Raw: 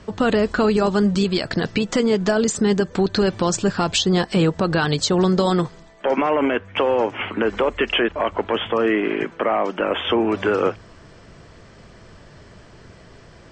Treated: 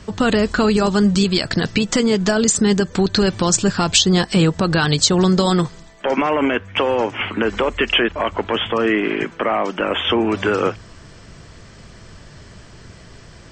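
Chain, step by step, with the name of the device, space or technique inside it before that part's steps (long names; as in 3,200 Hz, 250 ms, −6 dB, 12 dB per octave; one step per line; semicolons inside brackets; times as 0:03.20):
smiley-face EQ (low-shelf EQ 170 Hz +3 dB; parametric band 530 Hz −3.5 dB 1.8 octaves; high-shelf EQ 5,100 Hz +8.5 dB)
level +3 dB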